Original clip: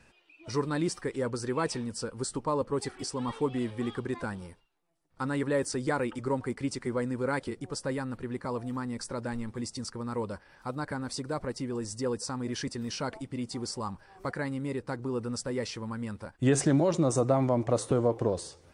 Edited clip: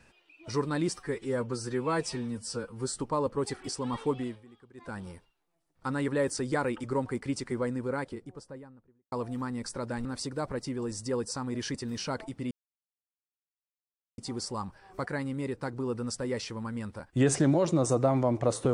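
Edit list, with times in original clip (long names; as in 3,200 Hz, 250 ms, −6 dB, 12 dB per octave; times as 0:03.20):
0:00.98–0:02.28: time-stretch 1.5×
0:03.48–0:04.41: duck −22 dB, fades 0.32 s
0:06.79–0:08.47: fade out and dull
0:09.40–0:10.98: remove
0:13.44: splice in silence 1.67 s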